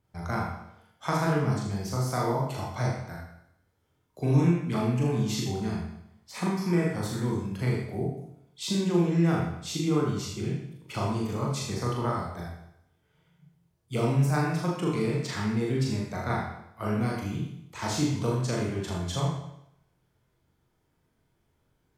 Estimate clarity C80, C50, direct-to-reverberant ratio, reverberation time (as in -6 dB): 4.5 dB, 1.5 dB, -3.5 dB, 0.80 s